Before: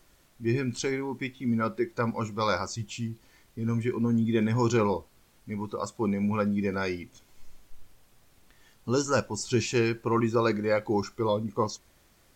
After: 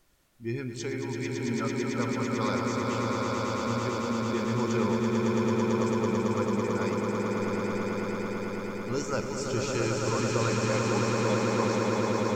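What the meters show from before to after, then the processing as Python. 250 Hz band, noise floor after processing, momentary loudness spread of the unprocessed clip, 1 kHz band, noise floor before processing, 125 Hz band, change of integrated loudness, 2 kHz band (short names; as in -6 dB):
+0.5 dB, -37 dBFS, 10 LU, +1.5 dB, -62 dBFS, +0.5 dB, 0.0 dB, +1.5 dB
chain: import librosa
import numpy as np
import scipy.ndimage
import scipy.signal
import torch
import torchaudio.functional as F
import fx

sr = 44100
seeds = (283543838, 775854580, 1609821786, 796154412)

y = fx.echo_swell(x, sr, ms=111, loudest=8, wet_db=-4.5)
y = y * 10.0 ** (-6.0 / 20.0)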